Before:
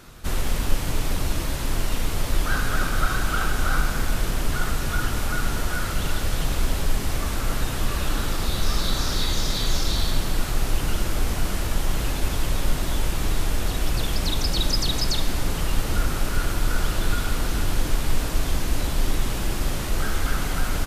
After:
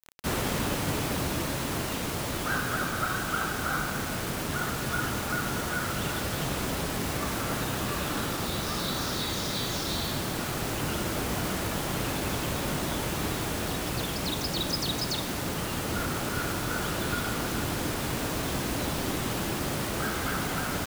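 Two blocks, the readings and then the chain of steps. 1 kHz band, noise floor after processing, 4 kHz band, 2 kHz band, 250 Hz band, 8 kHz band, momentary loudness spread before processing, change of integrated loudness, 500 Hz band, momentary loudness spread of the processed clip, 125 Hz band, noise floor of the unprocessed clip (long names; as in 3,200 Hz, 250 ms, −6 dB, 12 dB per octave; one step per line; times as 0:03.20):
−0.5 dB, −32 dBFS, −3.5 dB, −1.5 dB, 0.0 dB, −2.5 dB, 3 LU, −3.0 dB, 0.0 dB, 2 LU, −5.5 dB, −27 dBFS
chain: high-pass filter 120 Hz 12 dB per octave
high-shelf EQ 2,800 Hz −6 dB
speech leveller 2 s
bit reduction 6 bits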